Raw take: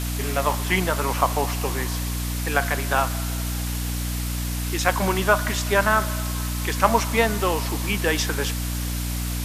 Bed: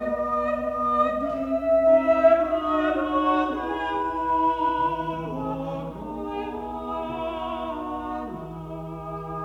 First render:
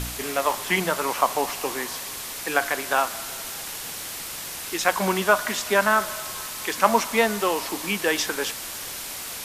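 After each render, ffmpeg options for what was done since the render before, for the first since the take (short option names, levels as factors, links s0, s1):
-af "bandreject=f=60:t=h:w=4,bandreject=f=120:t=h:w=4,bandreject=f=180:t=h:w=4,bandreject=f=240:t=h:w=4,bandreject=f=300:t=h:w=4"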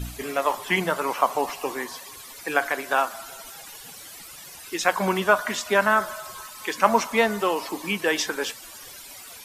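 -af "afftdn=nr=14:nf=-35"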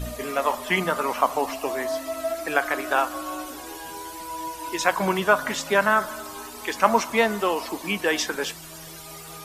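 -filter_complex "[1:a]volume=0.266[s0];[0:a][s0]amix=inputs=2:normalize=0"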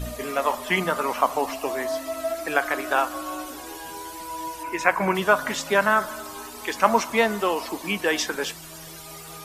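-filter_complex "[0:a]asettb=1/sr,asplit=3[s0][s1][s2];[s0]atrim=end=4.634[s3];[s1]atrim=start=4.63:end=5.15,asetpts=PTS-STARTPTS,afade=t=in:d=0.004:c=qsin,afade=t=out:st=0.516:d=0.004:c=qsin,highshelf=f=2800:t=q:w=3:g=-6[s4];[s2]atrim=start=5.146[s5];[s3][s4]acrossfade=d=0.004:c1=hsin:c2=qsin[s6];[s6][s5]acrossfade=d=0.004:c1=qsin:c2=hsin"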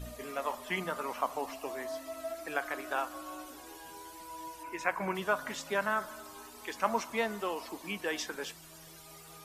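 -af "volume=0.266"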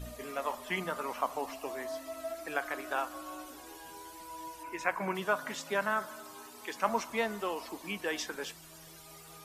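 -filter_complex "[0:a]asettb=1/sr,asplit=3[s0][s1][s2];[s0]atrim=end=4.984[s3];[s1]atrim=start=4.98:end=6.89,asetpts=PTS-STARTPTS,afade=t=in:d=0.004:c=qsin,afade=t=out:st=1.906:d=0.004:c=qsin,highpass=f=93:w=0.5412,highpass=f=93:w=1.3066[s4];[s2]atrim=start=6.886[s5];[s3][s4]acrossfade=d=0.004:c1=hsin:c2=qsin[s6];[s6][s5]acrossfade=d=0.004:c1=qsin:c2=hsin"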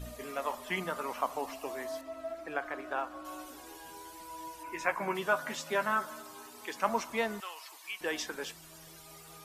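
-filter_complex "[0:a]asettb=1/sr,asplit=3[s0][s1][s2];[s0]atrim=end=2.014[s3];[s1]atrim=start=2.01:end=3.25,asetpts=PTS-STARTPTS,afade=t=in:d=0.004:c=qsin,afade=t=out:st=1.236:d=0.004:c=qsin,lowpass=f=1800:p=1[s4];[s2]atrim=start=3.246[s5];[s3][s4]acrossfade=d=0.004:c1=hsin:c2=qsin[s6];[s6][s5]acrossfade=d=0.004:c1=qsin:c2=hsin,asettb=1/sr,asplit=3[s7][s8][s9];[s7]atrim=end=4.684[s10];[s8]atrim=start=4.68:end=6.22,asetpts=PTS-STARTPTS,afade=t=in:d=0.004:c=qsin,afade=t=out:st=1.536:d=0.004:c=qsin,asplit=2[s11][s12];[s12]adelay=13,volume=0.447[s13];[s11][s13]amix=inputs=2:normalize=0,atrim=end_sample=67914[s14];[s9]atrim=start=6.216[s15];[s10][s14]acrossfade=d=0.004:c1=hsin:c2=qsin[s16];[s16][s15]acrossfade=d=0.004:c1=qsin:c2=hsin,asettb=1/sr,asplit=3[s17][s18][s19];[s17]atrim=end=7.404[s20];[s18]atrim=start=7.4:end=8.01,asetpts=PTS-STARTPTS,afade=t=in:d=0.004:c=qsin,afade=t=out:st=0.606:d=0.004:c=qsin,highpass=1400[s21];[s19]atrim=start=8.006[s22];[s20][s21]acrossfade=d=0.004:c1=hsin:c2=qsin[s23];[s23][s22]acrossfade=d=0.004:c1=qsin:c2=hsin"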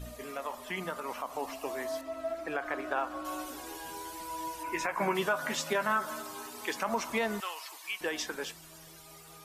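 -af "alimiter=level_in=1.19:limit=0.0631:level=0:latency=1:release=119,volume=0.841,dynaudnorm=f=370:g=11:m=2"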